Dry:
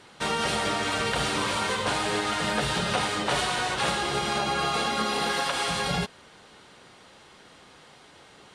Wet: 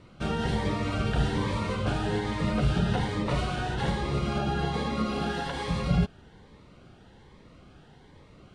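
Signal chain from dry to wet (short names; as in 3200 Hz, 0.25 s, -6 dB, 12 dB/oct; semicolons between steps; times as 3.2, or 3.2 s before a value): RIAA curve playback; cascading phaser rising 1.2 Hz; gain -3 dB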